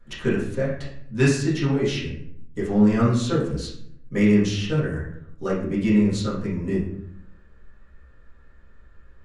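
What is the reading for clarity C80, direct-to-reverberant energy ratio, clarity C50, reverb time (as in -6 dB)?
7.5 dB, -9.0 dB, 3.5 dB, 0.70 s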